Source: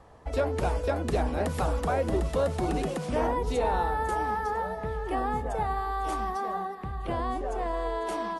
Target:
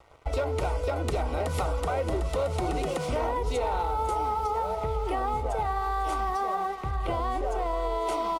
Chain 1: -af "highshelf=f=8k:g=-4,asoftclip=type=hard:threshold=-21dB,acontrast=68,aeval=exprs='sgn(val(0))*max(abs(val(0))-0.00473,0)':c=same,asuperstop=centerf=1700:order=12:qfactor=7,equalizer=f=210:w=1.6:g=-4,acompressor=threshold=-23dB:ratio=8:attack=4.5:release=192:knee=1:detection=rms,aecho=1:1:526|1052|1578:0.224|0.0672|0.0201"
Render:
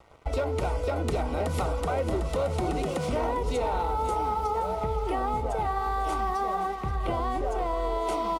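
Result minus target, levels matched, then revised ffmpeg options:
echo-to-direct +10 dB; 250 Hz band +2.5 dB
-af "highshelf=f=8k:g=-4,asoftclip=type=hard:threshold=-21dB,acontrast=68,aeval=exprs='sgn(val(0))*max(abs(val(0))-0.00473,0)':c=same,asuperstop=centerf=1700:order=12:qfactor=7,equalizer=f=210:w=1.6:g=-11,acompressor=threshold=-23dB:ratio=8:attack=4.5:release=192:knee=1:detection=rms,aecho=1:1:526|1052:0.0708|0.0212"

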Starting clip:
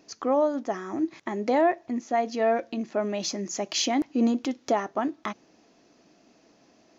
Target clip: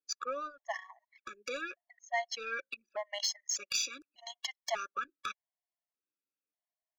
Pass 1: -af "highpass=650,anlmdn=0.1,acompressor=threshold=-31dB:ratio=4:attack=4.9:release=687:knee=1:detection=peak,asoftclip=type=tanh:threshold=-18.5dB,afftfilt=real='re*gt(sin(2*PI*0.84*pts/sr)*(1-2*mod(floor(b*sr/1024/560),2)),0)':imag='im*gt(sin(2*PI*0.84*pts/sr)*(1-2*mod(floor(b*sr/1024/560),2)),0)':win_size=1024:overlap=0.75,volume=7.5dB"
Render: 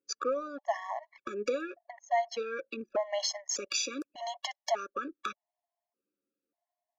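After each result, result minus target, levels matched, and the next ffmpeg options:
soft clip: distortion -12 dB; 500 Hz band +6.0 dB
-af "highpass=650,anlmdn=0.1,acompressor=threshold=-31dB:ratio=4:attack=4.9:release=687:knee=1:detection=peak,asoftclip=type=tanh:threshold=-26dB,afftfilt=real='re*gt(sin(2*PI*0.84*pts/sr)*(1-2*mod(floor(b*sr/1024/560),2)),0)':imag='im*gt(sin(2*PI*0.84*pts/sr)*(1-2*mod(floor(b*sr/1024/560),2)),0)':win_size=1024:overlap=0.75,volume=7.5dB"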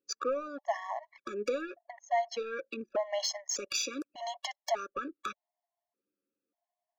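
500 Hz band +6.0 dB
-af "highpass=1.7k,anlmdn=0.1,acompressor=threshold=-31dB:ratio=4:attack=4.9:release=687:knee=1:detection=peak,asoftclip=type=tanh:threshold=-26dB,afftfilt=real='re*gt(sin(2*PI*0.84*pts/sr)*(1-2*mod(floor(b*sr/1024/560),2)),0)':imag='im*gt(sin(2*PI*0.84*pts/sr)*(1-2*mod(floor(b*sr/1024/560),2)),0)':win_size=1024:overlap=0.75,volume=7.5dB"

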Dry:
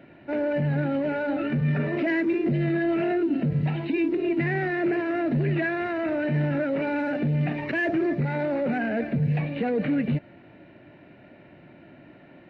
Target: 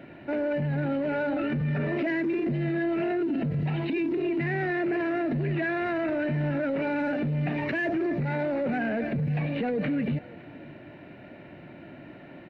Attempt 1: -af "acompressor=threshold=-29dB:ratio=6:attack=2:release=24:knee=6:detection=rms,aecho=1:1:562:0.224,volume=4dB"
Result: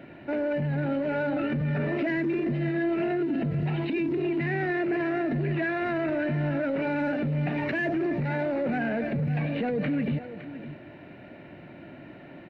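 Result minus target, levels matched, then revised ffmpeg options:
echo-to-direct +9.5 dB
-af "acompressor=threshold=-29dB:ratio=6:attack=2:release=24:knee=6:detection=rms,aecho=1:1:562:0.075,volume=4dB"

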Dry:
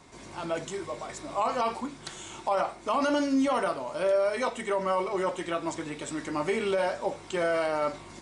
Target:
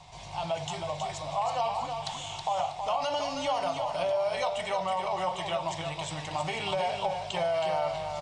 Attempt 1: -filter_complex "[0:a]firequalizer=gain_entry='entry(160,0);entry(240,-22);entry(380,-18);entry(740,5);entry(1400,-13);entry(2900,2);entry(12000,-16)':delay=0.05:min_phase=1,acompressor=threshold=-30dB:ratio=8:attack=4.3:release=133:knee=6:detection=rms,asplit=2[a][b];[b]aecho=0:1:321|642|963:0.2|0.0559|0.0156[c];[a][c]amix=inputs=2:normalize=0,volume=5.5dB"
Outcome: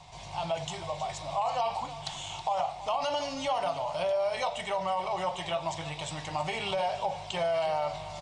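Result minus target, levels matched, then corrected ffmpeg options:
echo-to-direct -8 dB
-filter_complex "[0:a]firequalizer=gain_entry='entry(160,0);entry(240,-22);entry(380,-18);entry(740,5);entry(1400,-13);entry(2900,2);entry(12000,-16)':delay=0.05:min_phase=1,acompressor=threshold=-30dB:ratio=8:attack=4.3:release=133:knee=6:detection=rms,asplit=2[a][b];[b]aecho=0:1:321|642|963|1284:0.501|0.14|0.0393|0.011[c];[a][c]amix=inputs=2:normalize=0,volume=5.5dB"

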